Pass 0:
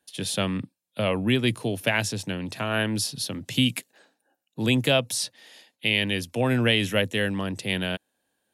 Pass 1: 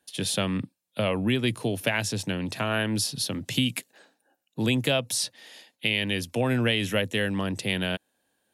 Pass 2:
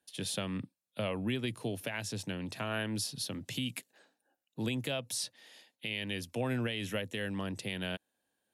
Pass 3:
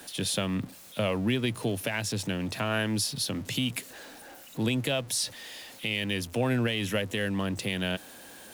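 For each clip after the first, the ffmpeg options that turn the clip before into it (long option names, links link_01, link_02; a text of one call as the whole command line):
ffmpeg -i in.wav -af "acompressor=threshold=-26dB:ratio=2,volume=2dB" out.wav
ffmpeg -i in.wav -af "alimiter=limit=-14.5dB:level=0:latency=1:release=146,volume=-8.5dB" out.wav
ffmpeg -i in.wav -af "aeval=exprs='val(0)+0.5*0.00422*sgn(val(0))':channel_layout=same,volume=6dB" out.wav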